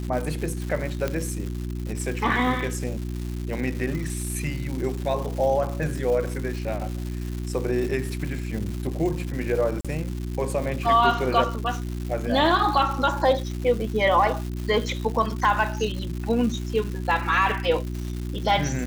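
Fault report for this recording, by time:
crackle 330/s -31 dBFS
hum 60 Hz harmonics 6 -30 dBFS
1.08 pop -12 dBFS
9.81–9.85 gap 36 ms

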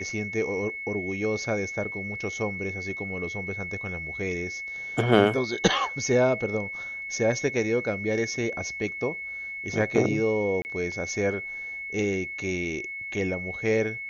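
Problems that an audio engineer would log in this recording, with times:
tone 2200 Hz -33 dBFS
10.62–10.65 gap 29 ms

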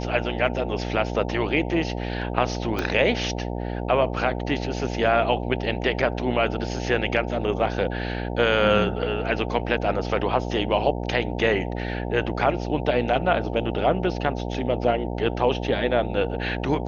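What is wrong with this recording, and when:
buzz 60 Hz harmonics 15 -29 dBFS
2.79 pop -12 dBFS

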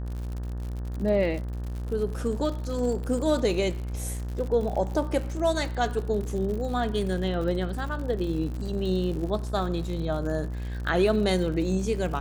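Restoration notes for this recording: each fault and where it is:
buzz 60 Hz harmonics 31 -32 dBFS
crackle 84/s -34 dBFS

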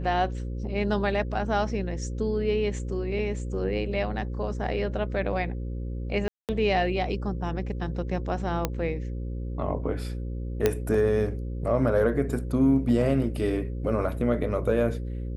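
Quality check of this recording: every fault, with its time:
buzz 60 Hz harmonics 9 -32 dBFS
6.28–6.49 gap 0.208 s
8.65 pop -10 dBFS
10.66 pop -8 dBFS

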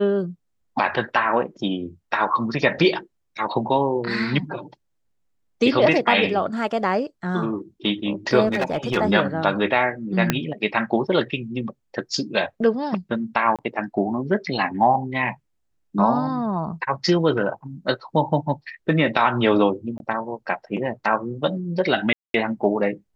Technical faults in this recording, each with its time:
8.46–8.98 clipped -17 dBFS
10.3 pop -3 dBFS
13.56–13.59 gap 27 ms
19.98–20 gap 21 ms
22.13–22.34 gap 0.212 s

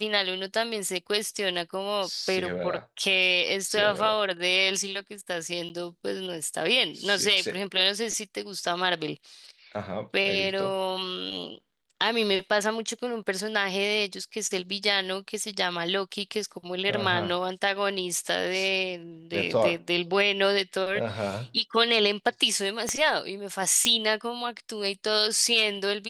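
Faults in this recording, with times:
5.69–5.7 gap 9.7 ms
22.89 pop -13 dBFS
23.85 pop -7 dBFS

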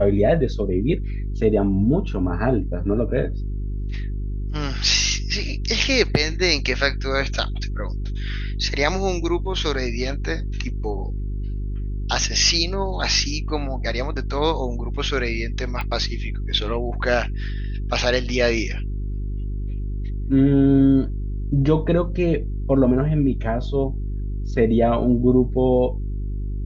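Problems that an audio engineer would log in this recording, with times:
hum 50 Hz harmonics 8 -26 dBFS
15.81 pop -16 dBFS

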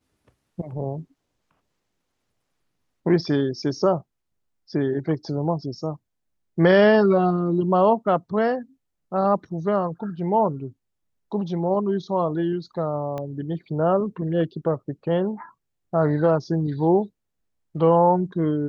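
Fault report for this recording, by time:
13.18 pop -19 dBFS

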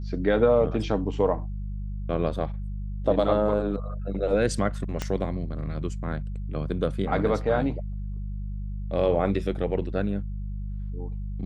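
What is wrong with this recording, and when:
hum 50 Hz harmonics 4 -32 dBFS
5.02 pop -14 dBFS

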